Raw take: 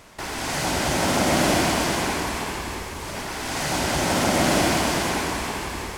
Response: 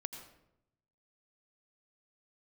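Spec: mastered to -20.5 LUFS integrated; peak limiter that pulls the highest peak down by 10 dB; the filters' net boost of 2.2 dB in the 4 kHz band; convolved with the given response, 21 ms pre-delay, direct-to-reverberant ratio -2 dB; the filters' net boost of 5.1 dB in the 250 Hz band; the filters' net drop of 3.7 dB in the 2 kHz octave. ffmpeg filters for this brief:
-filter_complex "[0:a]equalizer=f=250:t=o:g=6.5,equalizer=f=2000:t=o:g=-6,equalizer=f=4000:t=o:g=4.5,alimiter=limit=0.15:level=0:latency=1,asplit=2[s0][s1];[1:a]atrim=start_sample=2205,adelay=21[s2];[s1][s2]afir=irnorm=-1:irlink=0,volume=1.5[s3];[s0][s3]amix=inputs=2:normalize=0,volume=1.19"

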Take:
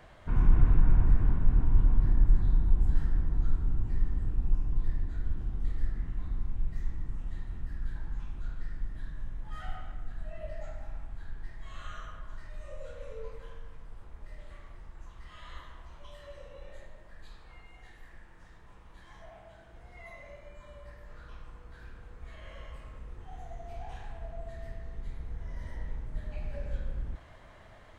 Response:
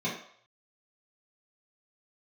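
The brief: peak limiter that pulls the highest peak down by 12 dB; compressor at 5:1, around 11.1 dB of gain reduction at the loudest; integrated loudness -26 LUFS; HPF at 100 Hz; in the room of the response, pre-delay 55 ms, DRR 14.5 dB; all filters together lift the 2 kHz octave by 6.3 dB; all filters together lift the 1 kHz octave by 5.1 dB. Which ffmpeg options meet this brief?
-filter_complex "[0:a]highpass=100,equalizer=f=1000:t=o:g=5,equalizer=f=2000:t=o:g=6,acompressor=threshold=0.00891:ratio=5,alimiter=level_in=8.91:limit=0.0631:level=0:latency=1,volume=0.112,asplit=2[s0][s1];[1:a]atrim=start_sample=2205,adelay=55[s2];[s1][s2]afir=irnorm=-1:irlink=0,volume=0.075[s3];[s0][s3]amix=inputs=2:normalize=0,volume=18.8"

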